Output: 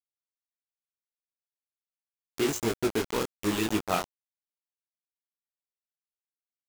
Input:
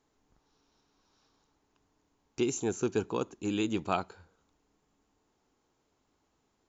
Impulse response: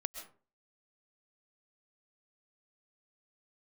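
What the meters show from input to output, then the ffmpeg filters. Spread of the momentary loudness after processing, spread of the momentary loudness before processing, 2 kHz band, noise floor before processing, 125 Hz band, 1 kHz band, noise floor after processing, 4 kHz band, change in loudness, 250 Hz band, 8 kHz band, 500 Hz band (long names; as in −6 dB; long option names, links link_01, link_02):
4 LU, 5 LU, +6.5 dB, −76 dBFS, +2.0 dB, +3.0 dB, below −85 dBFS, +7.0 dB, +3.0 dB, +2.0 dB, can't be measured, +2.5 dB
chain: -filter_complex "[0:a]asplit=2[link_01][link_02];[1:a]atrim=start_sample=2205[link_03];[link_02][link_03]afir=irnorm=-1:irlink=0,volume=-10.5dB[link_04];[link_01][link_04]amix=inputs=2:normalize=0,acrusher=bits=4:mix=0:aa=0.000001,flanger=delay=17.5:depth=7.2:speed=1.1,volume=3dB"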